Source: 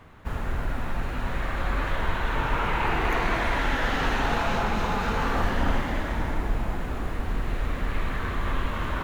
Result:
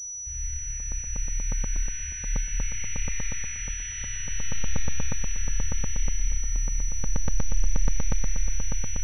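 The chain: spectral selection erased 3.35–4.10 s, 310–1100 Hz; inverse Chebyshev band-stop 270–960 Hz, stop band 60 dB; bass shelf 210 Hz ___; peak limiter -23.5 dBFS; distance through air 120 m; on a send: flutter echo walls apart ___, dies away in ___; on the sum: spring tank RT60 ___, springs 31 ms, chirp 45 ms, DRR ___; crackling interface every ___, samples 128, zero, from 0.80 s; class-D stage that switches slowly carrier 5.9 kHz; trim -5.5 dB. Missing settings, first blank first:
-4.5 dB, 4.8 m, 0.78 s, 3.6 s, -4 dB, 0.12 s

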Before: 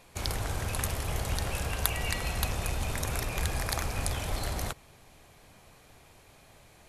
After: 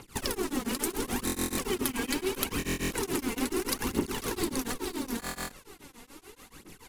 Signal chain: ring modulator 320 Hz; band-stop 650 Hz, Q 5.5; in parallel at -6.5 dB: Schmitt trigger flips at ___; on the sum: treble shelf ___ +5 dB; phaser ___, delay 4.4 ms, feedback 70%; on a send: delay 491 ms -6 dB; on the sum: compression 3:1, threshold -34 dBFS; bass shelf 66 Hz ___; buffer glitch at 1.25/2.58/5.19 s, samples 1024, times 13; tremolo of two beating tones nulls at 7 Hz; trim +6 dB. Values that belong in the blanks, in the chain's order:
-39.5 dBFS, 5.3 kHz, 0.75 Hz, +6 dB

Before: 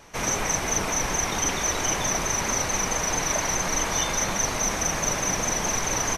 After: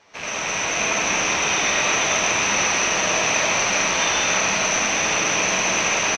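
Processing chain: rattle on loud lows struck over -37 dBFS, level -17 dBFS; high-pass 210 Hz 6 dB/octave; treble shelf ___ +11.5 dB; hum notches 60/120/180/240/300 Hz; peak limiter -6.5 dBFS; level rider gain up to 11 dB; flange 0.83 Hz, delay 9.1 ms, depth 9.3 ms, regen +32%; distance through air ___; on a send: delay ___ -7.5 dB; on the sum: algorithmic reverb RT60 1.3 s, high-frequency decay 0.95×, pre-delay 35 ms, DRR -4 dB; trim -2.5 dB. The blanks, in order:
2.7 kHz, 180 m, 972 ms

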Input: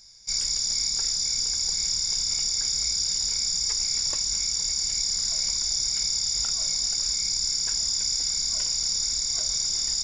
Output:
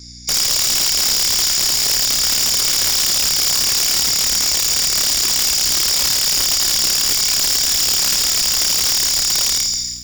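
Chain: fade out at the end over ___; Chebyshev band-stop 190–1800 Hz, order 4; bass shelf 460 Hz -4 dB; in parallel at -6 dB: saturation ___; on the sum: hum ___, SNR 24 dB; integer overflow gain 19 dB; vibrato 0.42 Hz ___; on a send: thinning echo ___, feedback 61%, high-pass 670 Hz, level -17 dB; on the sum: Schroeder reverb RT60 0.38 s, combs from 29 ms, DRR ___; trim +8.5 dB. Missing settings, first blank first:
0.55 s, -31 dBFS, 60 Hz, 5.5 cents, 156 ms, 9.5 dB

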